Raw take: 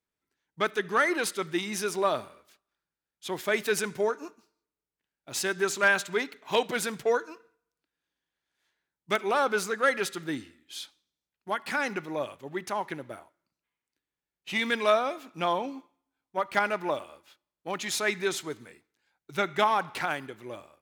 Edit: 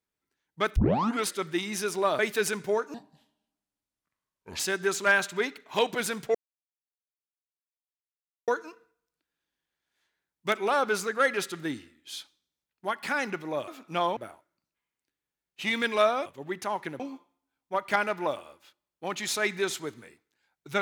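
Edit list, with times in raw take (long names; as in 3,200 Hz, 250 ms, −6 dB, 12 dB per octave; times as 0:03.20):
0:00.76: tape start 0.50 s
0:02.19–0:03.50: remove
0:04.25–0:05.36: play speed 67%
0:07.11: splice in silence 2.13 s
0:12.31–0:13.05: swap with 0:15.14–0:15.63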